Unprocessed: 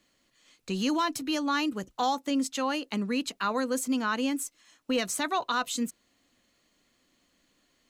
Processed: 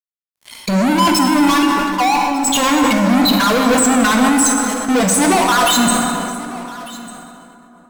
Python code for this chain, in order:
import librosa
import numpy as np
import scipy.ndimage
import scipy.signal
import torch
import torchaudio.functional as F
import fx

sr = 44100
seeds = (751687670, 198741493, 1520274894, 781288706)

p1 = fx.spec_expand(x, sr, power=3.4)
p2 = fx.highpass(p1, sr, hz=1200.0, slope=12, at=(1.61, 2.45), fade=0.02)
p3 = fx.over_compress(p2, sr, threshold_db=-32.0, ratio=-0.5)
p4 = p2 + (p3 * librosa.db_to_amplitude(-1.0))
p5 = fx.fuzz(p4, sr, gain_db=43.0, gate_db=-50.0)
p6 = p5 + fx.echo_single(p5, sr, ms=1197, db=-19.5, dry=0)
p7 = fx.rev_plate(p6, sr, seeds[0], rt60_s=3.3, hf_ratio=0.5, predelay_ms=0, drr_db=1.0)
p8 = fx.sustainer(p7, sr, db_per_s=24.0)
y = p8 * librosa.db_to_amplitude(-1.5)